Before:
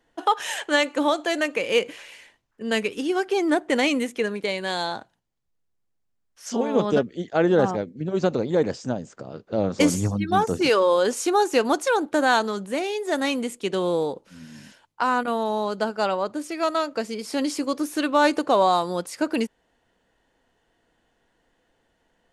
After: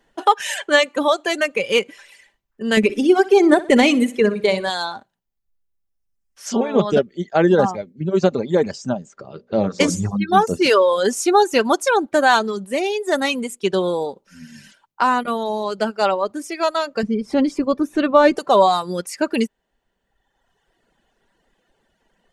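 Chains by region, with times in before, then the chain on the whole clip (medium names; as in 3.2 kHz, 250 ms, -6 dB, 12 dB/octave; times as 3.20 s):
2.77–4.70 s: bass shelf 480 Hz +8.5 dB + feedback delay 62 ms, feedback 49%, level -9 dB
9.08–10.11 s: low-pass 7.7 kHz + hum notches 60/120/180/240/300/360/420/480/540/600 Hz
17.03–18.37 s: RIAA curve playback + upward compressor, threshold -30 dBFS + tape noise reduction on one side only decoder only
whole clip: reverb removal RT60 1.4 s; comb 5.1 ms, depth 35%; trim +5 dB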